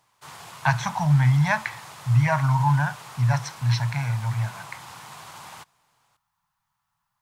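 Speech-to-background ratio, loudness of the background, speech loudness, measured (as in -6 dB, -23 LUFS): 18.5 dB, -41.5 LUFS, -23.0 LUFS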